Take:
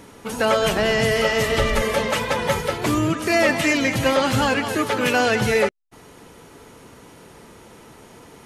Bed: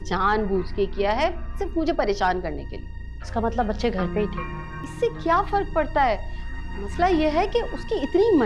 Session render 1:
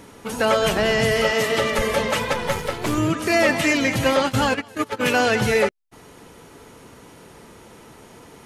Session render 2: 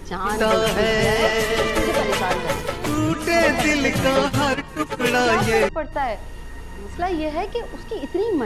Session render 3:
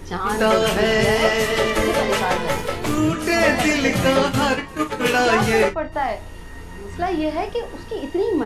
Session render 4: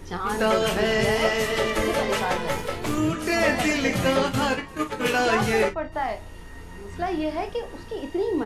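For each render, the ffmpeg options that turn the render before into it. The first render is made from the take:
ffmpeg -i in.wav -filter_complex "[0:a]asettb=1/sr,asplit=3[link_01][link_02][link_03];[link_01]atrim=end=1.314[link_04];[link_02]atrim=start=1.31:end=1.79,asetpts=PTS-STARTPTS,afade=type=in:duration=0.004:curve=qsin,afade=type=out:start_time=0.476:duration=0.004:curve=qsin,highpass=170[link_05];[link_03]atrim=start=1.786[link_06];[link_04][link_05]acrossfade=duration=0.004:curve1=hsin:curve2=qsin[link_07];[link_07][link_06]acrossfade=duration=0.004:curve1=qsin:curve2=hsin,asettb=1/sr,asplit=3[link_08][link_09][link_10];[link_08]atrim=end=2.334[link_11];[link_09]atrim=start=2.33:end=2.98,asetpts=PTS-STARTPTS,afade=type=in:duration=0.004:curve=qsin,afade=type=out:start_time=0.646:duration=0.004:curve=qsin,aeval=exprs='if(lt(val(0),0),0.447*val(0),val(0))':channel_layout=same[link_12];[link_10]atrim=start=2.976[link_13];[link_11][link_12]acrossfade=duration=0.004:curve1=hsin:curve2=qsin[link_14];[link_14][link_13]acrossfade=duration=0.004:curve1=qsin:curve2=hsin,asplit=3[link_15][link_16][link_17];[link_15]afade=type=out:start_time=4.19:duration=0.02[link_18];[link_16]agate=range=-18dB:threshold=-21dB:ratio=16:release=100:detection=peak,afade=type=in:start_time=4.19:duration=0.02,afade=type=out:start_time=4.99:duration=0.02[link_19];[link_17]afade=type=in:start_time=4.99:duration=0.02[link_20];[link_18][link_19][link_20]amix=inputs=3:normalize=0" out.wav
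ffmpeg -i in.wav -i bed.wav -filter_complex "[1:a]volume=-3.5dB[link_01];[0:a][link_01]amix=inputs=2:normalize=0" out.wav
ffmpeg -i in.wav -af "aecho=1:1:23|45|55:0.398|0.211|0.126" out.wav
ffmpeg -i in.wav -af "volume=-4.5dB" out.wav

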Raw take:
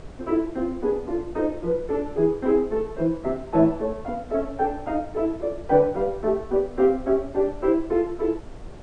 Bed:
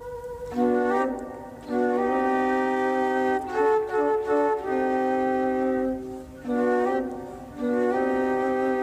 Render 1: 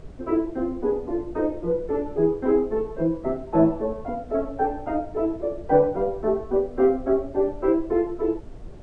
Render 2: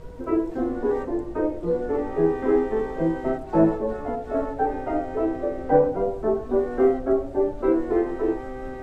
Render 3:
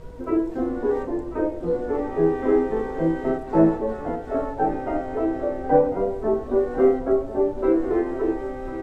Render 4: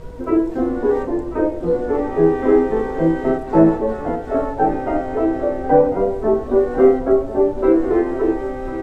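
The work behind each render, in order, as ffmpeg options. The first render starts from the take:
ffmpeg -i in.wav -af "afftdn=noise_reduction=7:noise_floor=-38" out.wav
ffmpeg -i in.wav -i bed.wav -filter_complex "[1:a]volume=-11dB[link_01];[0:a][link_01]amix=inputs=2:normalize=0" out.wav
ffmpeg -i in.wav -filter_complex "[0:a]asplit=2[link_01][link_02];[link_02]adelay=31,volume=-11.5dB[link_03];[link_01][link_03]amix=inputs=2:normalize=0,aecho=1:1:1046:0.224" out.wav
ffmpeg -i in.wav -af "volume=5.5dB,alimiter=limit=-2dB:level=0:latency=1" out.wav

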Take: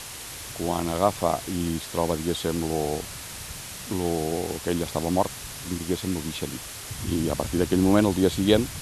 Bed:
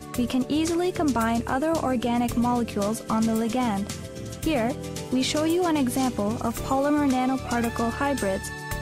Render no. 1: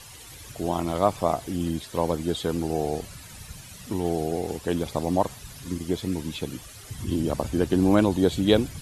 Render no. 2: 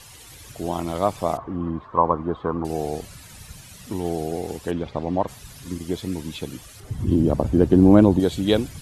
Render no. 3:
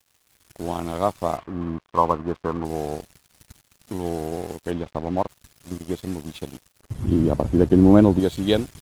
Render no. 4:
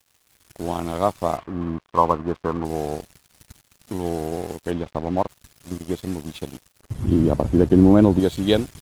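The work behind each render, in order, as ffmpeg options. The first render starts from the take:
ffmpeg -i in.wav -af "afftdn=noise_reduction=12:noise_floor=-39" out.wav
ffmpeg -i in.wav -filter_complex "[0:a]asettb=1/sr,asplit=3[link_01][link_02][link_03];[link_01]atrim=end=1.374[link_04];[link_02]atrim=start=1.37:end=2.65,asetpts=PTS-STARTPTS,afade=type=in:duration=0.004:curve=qsin,afade=type=out:start_time=1.276:duration=0.004:curve=qsin,lowpass=frequency=1100:width_type=q:width=8.6[link_05];[link_03]atrim=start=2.646[link_06];[link_04][link_05]acrossfade=duration=0.004:curve1=hsin:curve2=qsin[link_07];[link_07][link_06]acrossfade=duration=0.004:curve1=qsin:curve2=hsin,asplit=3[link_08][link_09][link_10];[link_08]afade=type=out:start_time=4.7:duration=0.02[link_11];[link_09]lowpass=2900,afade=type=in:start_time=4.7:duration=0.02,afade=type=out:start_time=5.27:duration=0.02[link_12];[link_10]afade=type=in:start_time=5.27:duration=0.02[link_13];[link_11][link_12][link_13]amix=inputs=3:normalize=0,asettb=1/sr,asplit=3[link_14][link_15][link_16];[link_14]atrim=end=6.804[link_17];[link_15]atrim=start=6.8:end=8.2,asetpts=PTS-STARTPTS,afade=type=in:duration=0.004:curve=qsin,afade=type=out:start_time=1.396:duration=0.004:curve=qsin,tiltshelf=frequency=1200:gain=8[link_18];[link_16]atrim=start=8.196[link_19];[link_17][link_18]acrossfade=duration=0.004:curve1=hsin:curve2=qsin[link_20];[link_20][link_19]acrossfade=duration=0.004:curve1=qsin:curve2=hsin" out.wav
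ffmpeg -i in.wav -af "aeval=exprs='sgn(val(0))*max(abs(val(0))-0.0119,0)':channel_layout=same" out.wav
ffmpeg -i in.wav -af "volume=1.5dB,alimiter=limit=-3dB:level=0:latency=1" out.wav

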